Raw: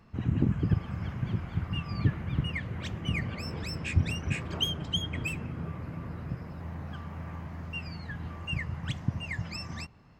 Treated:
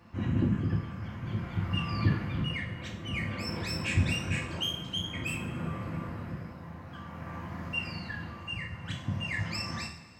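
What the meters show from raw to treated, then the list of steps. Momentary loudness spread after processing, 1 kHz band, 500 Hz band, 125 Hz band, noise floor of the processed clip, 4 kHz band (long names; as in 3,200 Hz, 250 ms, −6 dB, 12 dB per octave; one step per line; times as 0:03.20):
12 LU, +3.0 dB, +1.0 dB, −1.5 dB, −46 dBFS, 0.0 dB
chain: high-pass filter 61 Hz
low-shelf EQ 440 Hz −3 dB
amplitude tremolo 0.52 Hz, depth 56%
in parallel at −10.5 dB: soft clipping −34.5 dBFS, distortion −6 dB
on the sum: coupled-rooms reverb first 0.47 s, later 2.3 s, from −17 dB, DRR −2.5 dB
level −1 dB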